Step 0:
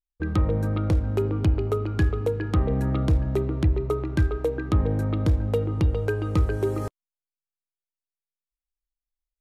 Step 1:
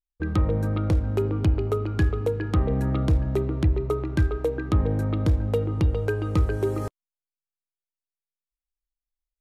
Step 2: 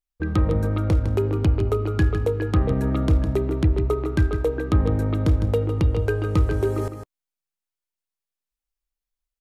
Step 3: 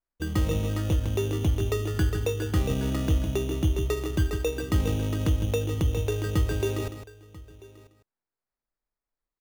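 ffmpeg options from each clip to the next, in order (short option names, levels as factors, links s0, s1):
-af anull
-af "aecho=1:1:156:0.355,volume=1.26"
-af "aecho=1:1:990:0.0891,acrusher=samples=14:mix=1:aa=0.000001,volume=0.562"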